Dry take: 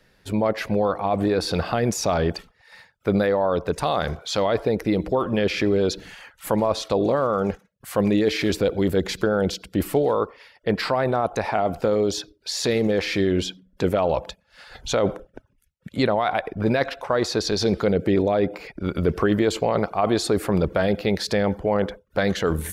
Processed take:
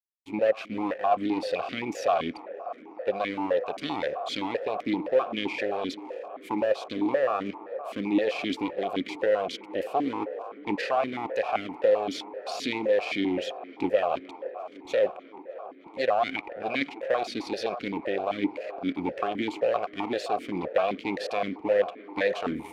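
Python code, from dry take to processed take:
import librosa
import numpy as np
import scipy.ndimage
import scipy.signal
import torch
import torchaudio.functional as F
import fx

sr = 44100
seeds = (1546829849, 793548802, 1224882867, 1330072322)

p1 = np.where(x < 0.0, 10.0 ** (-12.0 / 20.0) * x, x)
p2 = fx.rider(p1, sr, range_db=5, speed_s=0.5)
p3 = p1 + F.gain(torch.from_numpy(p2), 3.0).numpy()
p4 = fx.high_shelf(p3, sr, hz=2200.0, db=9.5)
p5 = np.sign(p4) * np.maximum(np.abs(p4) - 10.0 ** (-31.0 / 20.0), 0.0)
p6 = p5 + fx.echo_wet_bandpass(p5, sr, ms=309, feedback_pct=85, hz=740.0, wet_db=-13, dry=0)
y = fx.vowel_held(p6, sr, hz=7.7)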